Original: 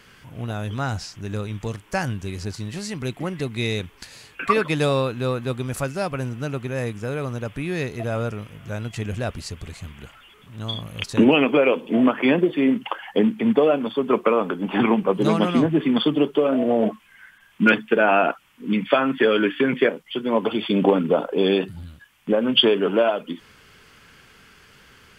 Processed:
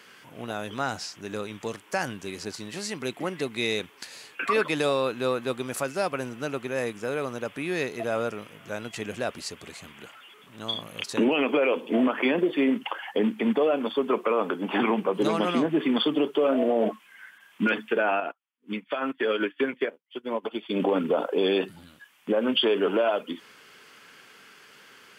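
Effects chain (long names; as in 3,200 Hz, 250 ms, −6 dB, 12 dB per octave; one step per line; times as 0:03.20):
high-pass filter 280 Hz 12 dB per octave
brickwall limiter −14.5 dBFS, peak gain reduction 10 dB
0:18.20–0:20.80: expander for the loud parts 2.5 to 1, over −44 dBFS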